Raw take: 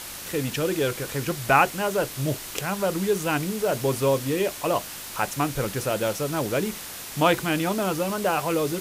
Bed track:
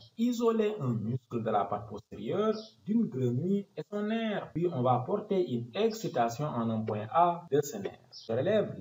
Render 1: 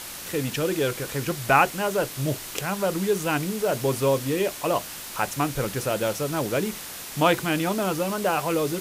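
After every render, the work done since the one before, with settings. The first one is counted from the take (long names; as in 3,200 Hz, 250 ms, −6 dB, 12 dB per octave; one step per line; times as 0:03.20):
hum removal 50 Hz, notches 2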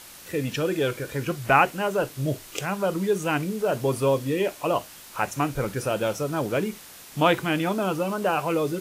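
noise reduction from a noise print 8 dB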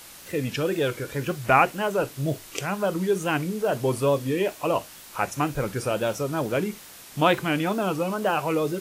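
tape wow and flutter 63 cents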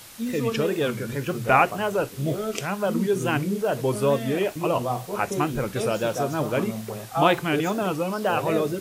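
mix in bed track −0.5 dB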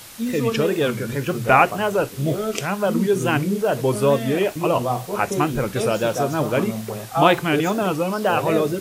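level +4 dB
brickwall limiter −1 dBFS, peak gain reduction 1 dB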